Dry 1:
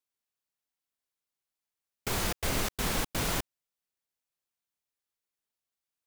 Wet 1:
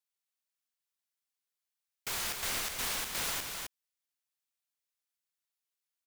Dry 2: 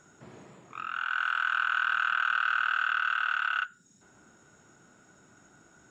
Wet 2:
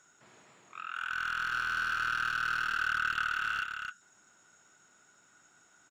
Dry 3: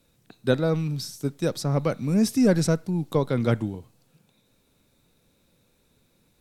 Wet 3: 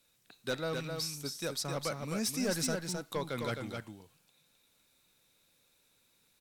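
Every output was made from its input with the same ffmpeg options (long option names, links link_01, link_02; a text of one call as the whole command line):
ffmpeg -i in.wav -af "tiltshelf=frequency=700:gain=-8,asoftclip=type=hard:threshold=-18dB,aecho=1:1:261:0.562,volume=-9dB" out.wav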